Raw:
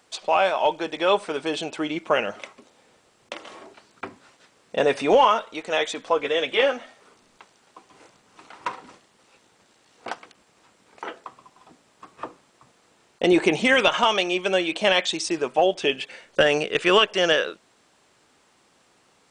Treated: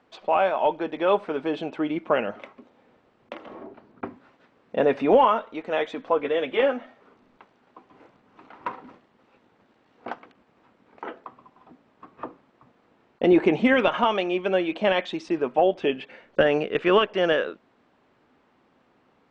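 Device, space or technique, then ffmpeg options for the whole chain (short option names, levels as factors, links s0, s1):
phone in a pocket: -filter_complex "[0:a]asettb=1/sr,asplit=3[s0][s1][s2];[s0]atrim=end=3.464[s3];[s1]atrim=start=3.46:end=4.05,asetpts=PTS-STARTPTS,afade=t=in:d=0.004:c=qsin,afade=t=out:st=0.586:d=0.004:c=qsin,tiltshelf=f=1200:g=6[s4];[s2]atrim=start=4.046[s5];[s3][s4]acrossfade=d=0.004:c1=hsin:c2=qsin[s6];[s6][s5]acrossfade=d=0.004:c1=qsin:c2=hsin,lowpass=3100,equalizer=f=250:t=o:w=0.46:g=5.5,highshelf=f=2100:g=-9"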